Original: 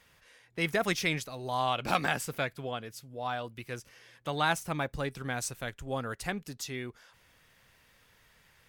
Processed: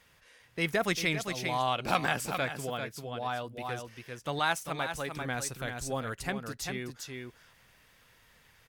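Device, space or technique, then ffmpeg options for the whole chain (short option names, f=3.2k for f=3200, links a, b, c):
ducked delay: -filter_complex "[0:a]asettb=1/sr,asplit=3[a][b][c];[a]atrim=end=4.394[d];[b]atrim=start=4.39:end=5.15,asetpts=PTS-STARTPTS,afade=t=in:d=0.004:c=qsin,afade=t=out:st=0.756:d=0.004:c=qsin,lowshelf=f=340:g=-8.5[e];[c]atrim=start=5.146[f];[d][e]acrossfade=d=0.004:c1=hsin:c2=qsin[g];[g][f]acrossfade=d=0.004:c1=qsin:c2=hsin,asplit=3[h][i][j];[i]adelay=395,volume=-4dB[k];[j]apad=whole_len=400406[l];[k][l]sidechaincompress=threshold=-36dB:ratio=5:attack=35:release=281[m];[h][m]amix=inputs=2:normalize=0"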